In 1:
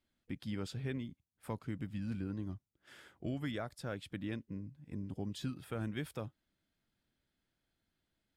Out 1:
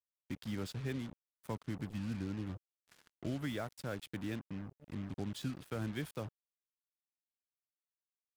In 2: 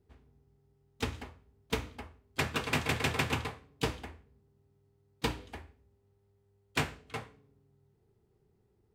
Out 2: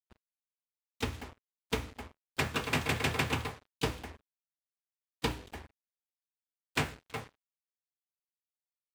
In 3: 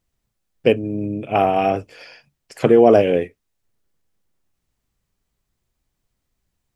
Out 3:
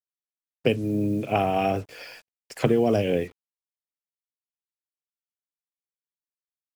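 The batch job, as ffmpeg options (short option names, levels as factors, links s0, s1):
-filter_complex "[0:a]acrossover=split=200|3000[s0][s1][s2];[s1]acompressor=threshold=0.1:ratio=10[s3];[s0][s3][s2]amix=inputs=3:normalize=0,acrusher=bits=7:mix=0:aa=0.5"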